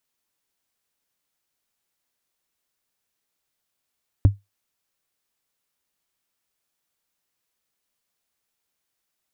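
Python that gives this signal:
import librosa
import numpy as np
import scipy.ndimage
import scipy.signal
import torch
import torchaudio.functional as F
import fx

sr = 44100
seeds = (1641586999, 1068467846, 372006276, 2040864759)

y = fx.strike_wood(sr, length_s=0.45, level_db=-6, body='bar', hz=100.0, decay_s=0.18, tilt_db=9.5, modes=5)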